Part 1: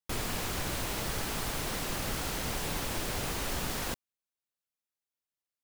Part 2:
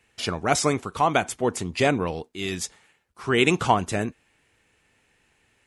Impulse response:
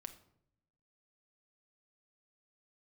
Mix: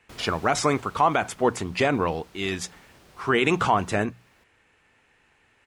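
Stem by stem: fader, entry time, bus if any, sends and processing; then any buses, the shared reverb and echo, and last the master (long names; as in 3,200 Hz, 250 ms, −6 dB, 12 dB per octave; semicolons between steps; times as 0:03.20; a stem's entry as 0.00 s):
−9.0 dB, 0.00 s, send −12.5 dB, echo send −18 dB, high-pass filter 45 Hz; automatic ducking −14 dB, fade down 1.55 s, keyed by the second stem
+0.5 dB, 0.00 s, no send, no echo send, parametric band 1,200 Hz +5.5 dB 1.8 octaves; mains-hum notches 60/120/180 Hz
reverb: on, RT60 0.70 s, pre-delay 5 ms
echo: single-tap delay 495 ms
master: high-shelf EQ 7,300 Hz −9 dB; brickwall limiter −9.5 dBFS, peak gain reduction 8 dB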